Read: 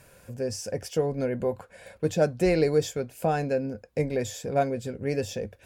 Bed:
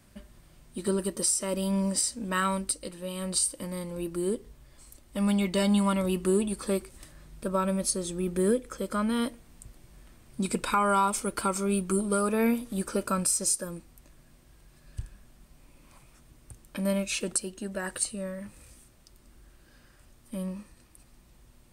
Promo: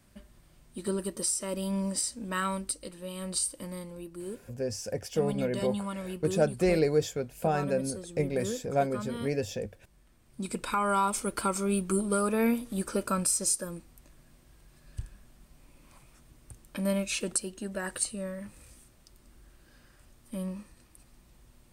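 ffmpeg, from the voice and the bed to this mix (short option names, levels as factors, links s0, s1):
-filter_complex "[0:a]adelay=4200,volume=0.75[s0];[1:a]volume=1.88,afade=t=out:st=3.71:d=0.37:silence=0.473151,afade=t=in:st=10.08:d=1.15:silence=0.354813[s1];[s0][s1]amix=inputs=2:normalize=0"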